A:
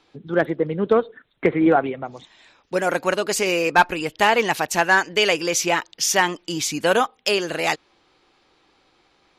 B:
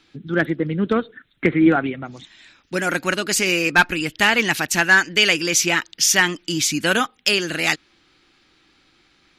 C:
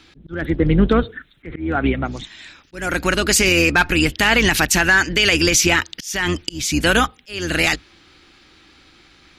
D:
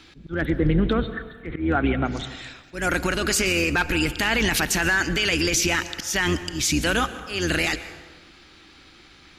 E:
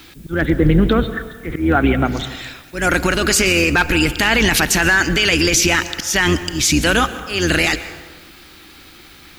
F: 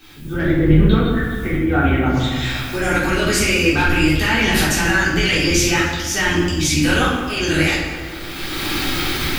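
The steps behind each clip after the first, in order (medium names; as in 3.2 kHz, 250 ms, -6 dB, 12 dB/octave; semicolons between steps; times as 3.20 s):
high-order bell 670 Hz -10 dB; trim +4.5 dB
octave divider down 2 oct, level -3 dB; peak limiter -13 dBFS, peak gain reduction 11 dB; slow attack 387 ms; trim +8 dB
peak limiter -12.5 dBFS, peak gain reduction 7.5 dB; plate-style reverb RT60 1.4 s, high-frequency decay 0.6×, pre-delay 105 ms, DRR 13 dB
added noise blue -58 dBFS; trim +7 dB
recorder AGC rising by 25 dB/s; simulated room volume 280 m³, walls mixed, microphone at 3.6 m; trim -12 dB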